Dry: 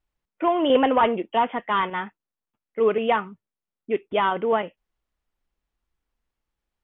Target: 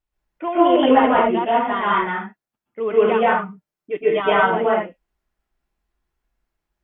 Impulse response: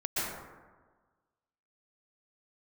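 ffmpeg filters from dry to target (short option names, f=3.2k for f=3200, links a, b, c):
-filter_complex "[0:a]asettb=1/sr,asplit=3[a][b][c];[a]atrim=end=3.144[d];[b]atrim=start=3.14:end=4.43,asetpts=PTS-STARTPTS,afade=t=in:d=0.004:c=qsin,afade=t=out:st=1.286:d=0.004:c=qsin,aecho=1:1:6.6:0.82,atrim=end_sample=56889[e];[c]atrim=start=4.426[f];[d][e]acrossfade=d=0.004:c1=hsin:c2=qsin[g];[g][f]acrossfade=d=0.004:c1=qsin:c2=hsin[h];[1:a]atrim=start_sample=2205,afade=t=out:st=0.29:d=0.01,atrim=end_sample=13230[i];[h][i]afir=irnorm=-1:irlink=0,volume=-2dB"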